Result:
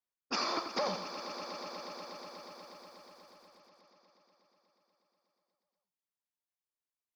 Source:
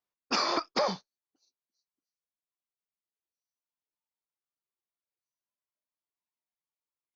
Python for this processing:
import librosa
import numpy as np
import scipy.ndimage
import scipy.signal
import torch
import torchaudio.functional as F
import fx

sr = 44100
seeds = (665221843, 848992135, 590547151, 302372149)

y = fx.echo_swell(x, sr, ms=121, loudest=5, wet_db=-14.5)
y = fx.echo_crushed(y, sr, ms=87, feedback_pct=35, bits=9, wet_db=-7.5)
y = y * librosa.db_to_amplitude(-6.0)